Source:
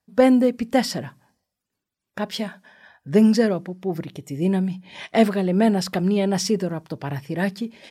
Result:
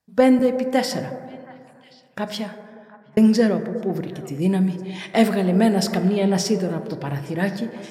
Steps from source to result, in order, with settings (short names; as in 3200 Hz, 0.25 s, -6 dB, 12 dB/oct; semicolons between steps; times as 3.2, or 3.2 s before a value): 0.39–0.87 HPF 260 Hz; 2.24–3.17 fade out; 4.39–5.86 high shelf 4800 Hz +6 dB; delay with a stepping band-pass 0.36 s, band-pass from 460 Hz, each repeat 1.4 oct, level -12 dB; plate-style reverb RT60 2.4 s, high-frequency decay 0.25×, DRR 8.5 dB